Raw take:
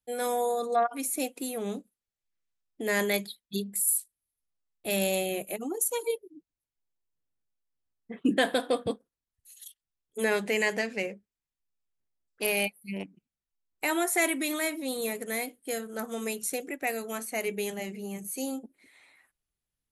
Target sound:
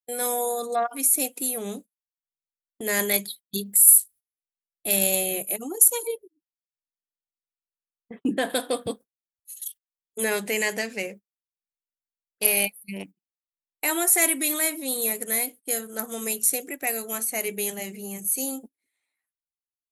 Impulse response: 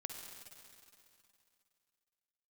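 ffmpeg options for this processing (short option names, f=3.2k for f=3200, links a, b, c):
-filter_complex "[0:a]acontrast=89,aemphasis=mode=production:type=50fm,agate=range=-25dB:threshold=-35dB:ratio=16:detection=peak,asettb=1/sr,asplit=3[a][b][c];[a]atrim=end=6.074[d];[b]atrim=start=6.07:end=8.5,asetpts=PTS-STARTPTS,afade=t=in:d=0.004:c=qsin,afade=t=out:st=2.426:d=0.004:c=qsin,highshelf=f=2.6k:g=-10.5[e];[c]atrim=start=8.496[f];[d][e]acrossfade=d=0.004:c1=hsin:c2=qsin[g];[g][f]acrossfade=d=0.004:c1=qsin:c2=hsin,volume=-6.5dB"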